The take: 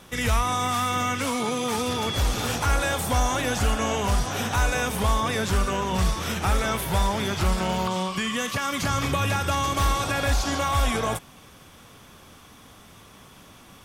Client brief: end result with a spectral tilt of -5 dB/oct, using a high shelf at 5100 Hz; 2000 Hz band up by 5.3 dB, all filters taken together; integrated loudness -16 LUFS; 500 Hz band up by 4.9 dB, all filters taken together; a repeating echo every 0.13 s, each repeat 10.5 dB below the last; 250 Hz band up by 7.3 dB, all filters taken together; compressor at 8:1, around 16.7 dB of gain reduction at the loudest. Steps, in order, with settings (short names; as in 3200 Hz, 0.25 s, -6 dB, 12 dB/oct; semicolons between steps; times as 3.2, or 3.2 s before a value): bell 250 Hz +8 dB; bell 500 Hz +3.5 dB; bell 2000 Hz +7.5 dB; high shelf 5100 Hz -6 dB; compressor 8:1, threshold -34 dBFS; feedback echo 0.13 s, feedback 30%, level -10.5 dB; gain +21 dB